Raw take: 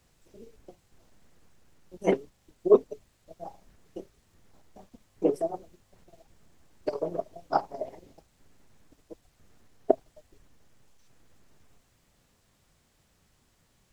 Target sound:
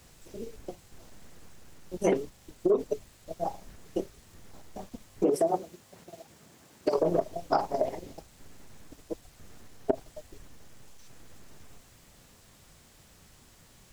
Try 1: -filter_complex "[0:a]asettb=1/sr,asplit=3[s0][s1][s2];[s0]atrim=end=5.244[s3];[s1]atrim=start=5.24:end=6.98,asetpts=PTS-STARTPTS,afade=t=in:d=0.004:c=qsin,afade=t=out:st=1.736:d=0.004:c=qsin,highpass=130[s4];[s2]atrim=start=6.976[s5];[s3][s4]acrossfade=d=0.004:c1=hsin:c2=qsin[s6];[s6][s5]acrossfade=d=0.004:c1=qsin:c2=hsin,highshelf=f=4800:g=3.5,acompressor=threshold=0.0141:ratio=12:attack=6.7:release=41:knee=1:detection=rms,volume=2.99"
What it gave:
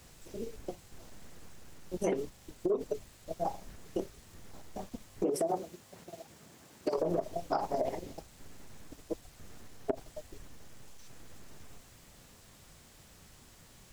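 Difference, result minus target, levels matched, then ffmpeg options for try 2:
compression: peak gain reduction +6.5 dB
-filter_complex "[0:a]asettb=1/sr,asplit=3[s0][s1][s2];[s0]atrim=end=5.244[s3];[s1]atrim=start=5.24:end=6.98,asetpts=PTS-STARTPTS,afade=t=in:d=0.004:c=qsin,afade=t=out:st=1.736:d=0.004:c=qsin,highpass=130[s4];[s2]atrim=start=6.976[s5];[s3][s4]acrossfade=d=0.004:c1=hsin:c2=qsin[s6];[s6][s5]acrossfade=d=0.004:c1=qsin:c2=hsin,highshelf=f=4800:g=3.5,acompressor=threshold=0.0316:ratio=12:attack=6.7:release=41:knee=1:detection=rms,volume=2.99"

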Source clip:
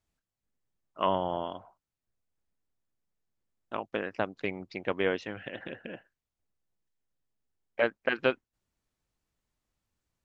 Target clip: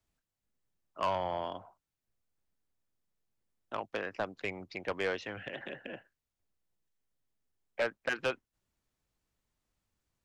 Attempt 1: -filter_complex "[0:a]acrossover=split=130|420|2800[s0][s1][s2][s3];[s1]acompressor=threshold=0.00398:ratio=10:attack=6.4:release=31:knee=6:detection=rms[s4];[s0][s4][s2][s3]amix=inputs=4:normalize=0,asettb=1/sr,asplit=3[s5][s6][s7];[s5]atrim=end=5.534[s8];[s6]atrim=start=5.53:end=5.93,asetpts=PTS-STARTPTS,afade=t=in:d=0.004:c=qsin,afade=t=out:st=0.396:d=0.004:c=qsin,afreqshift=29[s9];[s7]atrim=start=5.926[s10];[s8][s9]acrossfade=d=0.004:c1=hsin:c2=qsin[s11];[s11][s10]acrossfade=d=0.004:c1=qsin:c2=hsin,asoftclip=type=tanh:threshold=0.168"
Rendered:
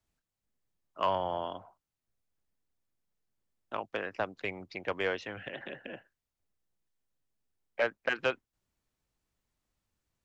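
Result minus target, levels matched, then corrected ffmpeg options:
saturation: distortion -9 dB
-filter_complex "[0:a]acrossover=split=130|420|2800[s0][s1][s2][s3];[s1]acompressor=threshold=0.00398:ratio=10:attack=6.4:release=31:knee=6:detection=rms[s4];[s0][s4][s2][s3]amix=inputs=4:normalize=0,asettb=1/sr,asplit=3[s5][s6][s7];[s5]atrim=end=5.534[s8];[s6]atrim=start=5.53:end=5.93,asetpts=PTS-STARTPTS,afade=t=in:d=0.004:c=qsin,afade=t=out:st=0.396:d=0.004:c=qsin,afreqshift=29[s9];[s7]atrim=start=5.926[s10];[s8][s9]acrossfade=d=0.004:c1=hsin:c2=qsin[s11];[s11][s10]acrossfade=d=0.004:c1=qsin:c2=hsin,asoftclip=type=tanh:threshold=0.0708"

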